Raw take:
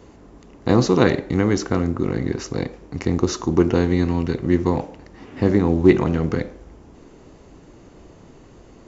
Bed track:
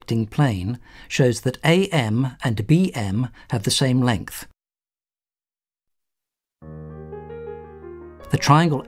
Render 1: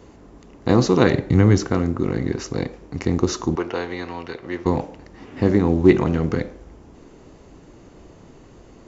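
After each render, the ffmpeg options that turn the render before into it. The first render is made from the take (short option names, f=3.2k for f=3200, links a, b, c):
-filter_complex "[0:a]asettb=1/sr,asplit=3[a][b][c];[a]atrim=end=1.134[d];[b]atrim=start=1.13:end=1.68,asetpts=PTS-STARTPTS,afade=t=in:d=0.004:c=qsin,afade=t=out:st=0.546:d=0.004:c=qsin,equalizer=f=110:w=1.1:g=10[e];[c]atrim=start=1.676[f];[d][e]acrossfade=d=0.004:c1=hsin:c2=qsin[g];[g][f]acrossfade=d=0.004:c1=qsin:c2=hsin,asettb=1/sr,asplit=3[h][i][j];[h]atrim=end=3.554[k];[i]atrim=start=3.55:end=4.66,asetpts=PTS-STARTPTS,afade=t=in:d=0.004:c=qsin,afade=t=out:st=1.106:d=0.004:c=qsin,acrossover=split=470 5500:gain=0.126 1 0.158[l][m][n];[l][m][n]amix=inputs=3:normalize=0[o];[j]atrim=start=4.656[p];[k][o]acrossfade=d=0.004:c1=hsin:c2=qsin[q];[q][p]acrossfade=d=0.004:c1=qsin:c2=hsin"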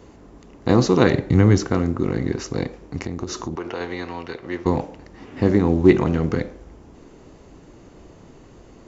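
-filter_complex "[0:a]asettb=1/sr,asplit=3[a][b][c];[a]atrim=end=3.014[d];[b]atrim=start=3.01:end=3.81,asetpts=PTS-STARTPTS,afade=t=in:d=0.004:c=qsin,afade=t=out:st=0.796:d=0.004:c=qsin,acompressor=threshold=-24dB:ratio=5:attack=3.2:release=140:knee=1:detection=peak[e];[c]atrim=start=3.806[f];[d][e]acrossfade=d=0.004:c1=hsin:c2=qsin[g];[g][f]acrossfade=d=0.004:c1=qsin:c2=hsin"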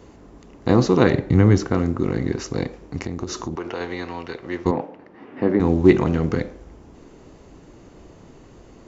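-filter_complex "[0:a]asettb=1/sr,asplit=3[a][b][c];[a]atrim=end=0.694[d];[b]atrim=start=0.69:end=1.78,asetpts=PTS-STARTPTS,afade=t=in:d=0.004:c=qsin,afade=t=out:st=1.086:d=0.004:c=qsin,highshelf=f=4.2k:g=-5.5[e];[c]atrim=start=1.776[f];[d][e]acrossfade=d=0.004:c1=hsin:c2=qsin[g];[g][f]acrossfade=d=0.004:c1=qsin:c2=hsin,asettb=1/sr,asplit=3[h][i][j];[h]atrim=end=4.714[k];[i]atrim=start=4.71:end=5.6,asetpts=PTS-STARTPTS,afade=t=in:d=0.004:c=qsin,afade=t=out:st=0.886:d=0.004:c=qsin,highpass=210,lowpass=2.2k[l];[j]atrim=start=5.596[m];[k][l]acrossfade=d=0.004:c1=hsin:c2=qsin[n];[n][m]acrossfade=d=0.004:c1=qsin:c2=hsin"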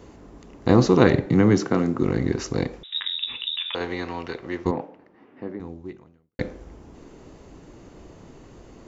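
-filter_complex "[0:a]asettb=1/sr,asplit=3[a][b][c];[a]atrim=end=1.264[d];[b]atrim=start=1.26:end=2.02,asetpts=PTS-STARTPTS,afade=t=in:d=0.004:c=qsin,afade=t=out:st=0.756:d=0.004:c=qsin,highpass=f=130:w=0.5412,highpass=f=130:w=1.3066[e];[c]atrim=start=2.016[f];[d][e]acrossfade=d=0.004:c1=hsin:c2=qsin[g];[g][f]acrossfade=d=0.004:c1=qsin:c2=hsin,asettb=1/sr,asplit=3[h][i][j];[h]atrim=end=2.834[k];[i]atrim=start=2.83:end=3.75,asetpts=PTS-STARTPTS,afade=t=in:d=0.004:c=qsin,afade=t=out:st=0.916:d=0.004:c=qsin,lowpass=f=3.3k:t=q:w=0.5098,lowpass=f=3.3k:t=q:w=0.6013,lowpass=f=3.3k:t=q:w=0.9,lowpass=f=3.3k:t=q:w=2.563,afreqshift=-3900[l];[j]atrim=start=3.746[m];[k][l]acrossfade=d=0.004:c1=hsin:c2=qsin[n];[n][m]acrossfade=d=0.004:c1=qsin:c2=hsin,asplit=2[o][p];[o]atrim=end=6.39,asetpts=PTS-STARTPTS,afade=t=out:st=4.32:d=2.07:c=qua[q];[p]atrim=start=6.39,asetpts=PTS-STARTPTS,afade=t=in:d=0.004:c=hsin[r];[q][r]concat=n=2:v=0:a=1"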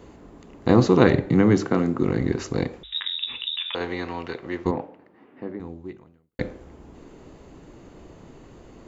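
-af "equalizer=f=5.6k:t=o:w=0.35:g=-6.5,bandreject=f=50:t=h:w=6,bandreject=f=100:t=h:w=6"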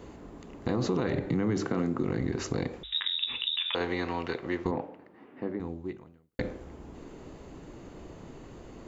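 -af "alimiter=limit=-14.5dB:level=0:latency=1:release=26,acompressor=threshold=-26dB:ratio=3"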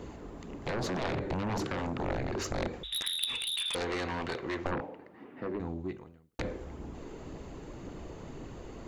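-af "aphaser=in_gain=1:out_gain=1:delay=2.6:decay=0.27:speed=1.9:type=triangular,aeval=exprs='0.178*(cos(1*acos(clip(val(0)/0.178,-1,1)))-cos(1*PI/2))+0.0891*(cos(3*acos(clip(val(0)/0.178,-1,1)))-cos(3*PI/2))+0.00141*(cos(4*acos(clip(val(0)/0.178,-1,1)))-cos(4*PI/2))+0.0178*(cos(7*acos(clip(val(0)/0.178,-1,1)))-cos(7*PI/2))':c=same"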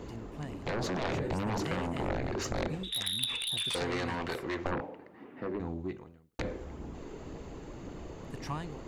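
-filter_complex "[1:a]volume=-23.5dB[a];[0:a][a]amix=inputs=2:normalize=0"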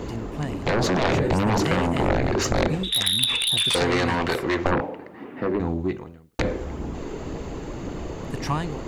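-af "volume=11.5dB,alimiter=limit=-3dB:level=0:latency=1"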